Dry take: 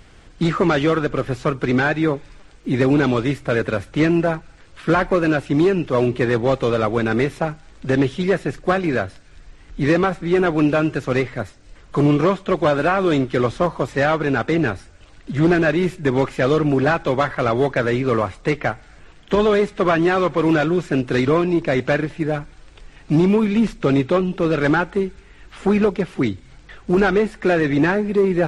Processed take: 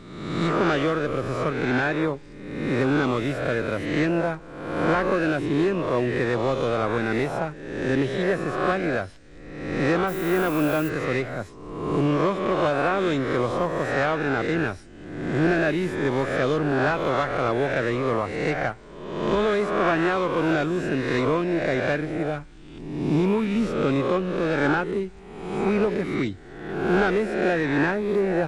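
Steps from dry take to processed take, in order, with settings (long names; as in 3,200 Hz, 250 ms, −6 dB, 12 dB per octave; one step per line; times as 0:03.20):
peak hold with a rise ahead of every peak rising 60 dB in 1.09 s
0:10.07–0:10.88: background noise violet −33 dBFS
level −7.5 dB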